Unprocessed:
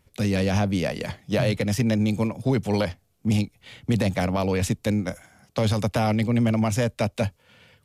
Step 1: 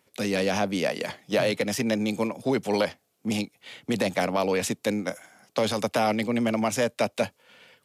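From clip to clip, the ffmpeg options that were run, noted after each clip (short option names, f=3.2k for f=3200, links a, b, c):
-af "highpass=280,volume=1.5dB"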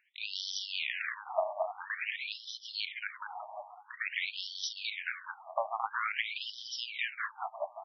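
-af "aecho=1:1:220|418|596.2|756.6|900.9:0.631|0.398|0.251|0.158|0.1,afftfilt=real='re*between(b*sr/1024,840*pow(4300/840,0.5+0.5*sin(2*PI*0.49*pts/sr))/1.41,840*pow(4300/840,0.5+0.5*sin(2*PI*0.49*pts/sr))*1.41)':imag='im*between(b*sr/1024,840*pow(4300/840,0.5+0.5*sin(2*PI*0.49*pts/sr))/1.41,840*pow(4300/840,0.5+0.5*sin(2*PI*0.49*pts/sr))*1.41)':win_size=1024:overlap=0.75"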